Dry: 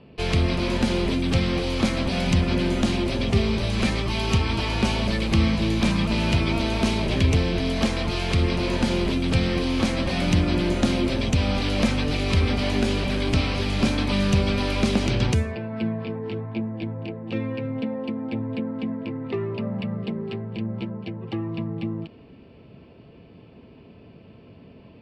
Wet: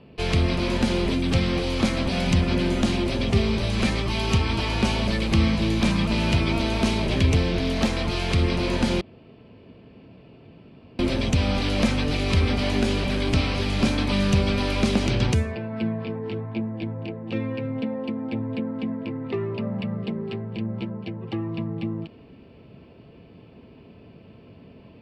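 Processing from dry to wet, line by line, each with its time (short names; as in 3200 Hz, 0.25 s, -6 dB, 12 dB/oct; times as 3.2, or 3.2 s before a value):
7.48–7.93 Doppler distortion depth 0.2 ms
9.01–10.99 room tone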